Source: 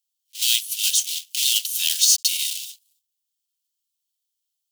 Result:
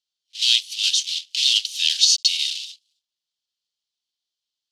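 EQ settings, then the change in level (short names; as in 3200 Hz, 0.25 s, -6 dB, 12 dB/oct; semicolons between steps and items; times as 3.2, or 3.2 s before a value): synth low-pass 4400 Hz, resonance Q 1.8; 0.0 dB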